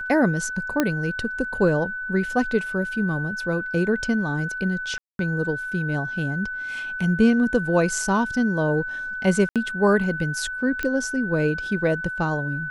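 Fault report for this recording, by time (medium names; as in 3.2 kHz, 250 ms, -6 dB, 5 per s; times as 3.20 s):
whine 1.5 kHz -28 dBFS
0.80 s: pop -6 dBFS
4.98–5.19 s: dropout 212 ms
9.49–9.56 s: dropout 67 ms
10.83 s: pop -13 dBFS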